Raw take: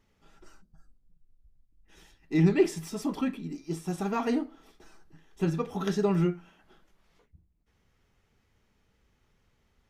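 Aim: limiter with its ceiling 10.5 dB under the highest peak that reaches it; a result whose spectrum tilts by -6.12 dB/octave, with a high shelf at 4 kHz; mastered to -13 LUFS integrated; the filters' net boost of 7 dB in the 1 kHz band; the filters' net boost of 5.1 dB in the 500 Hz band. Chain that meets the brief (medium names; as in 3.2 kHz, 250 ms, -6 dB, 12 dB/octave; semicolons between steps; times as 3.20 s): peaking EQ 500 Hz +6 dB; peaking EQ 1 kHz +7.5 dB; treble shelf 4 kHz -7.5 dB; trim +16 dB; peak limiter -1 dBFS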